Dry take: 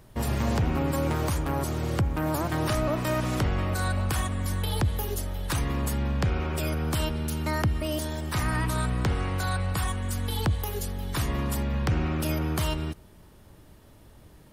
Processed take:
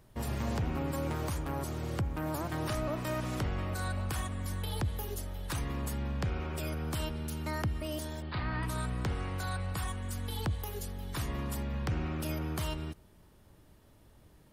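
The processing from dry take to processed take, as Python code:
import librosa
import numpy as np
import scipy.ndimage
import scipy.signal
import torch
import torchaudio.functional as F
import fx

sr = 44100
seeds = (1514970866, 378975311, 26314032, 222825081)

y = fx.steep_lowpass(x, sr, hz=4700.0, slope=96, at=(8.22, 8.63))
y = y * librosa.db_to_amplitude(-7.5)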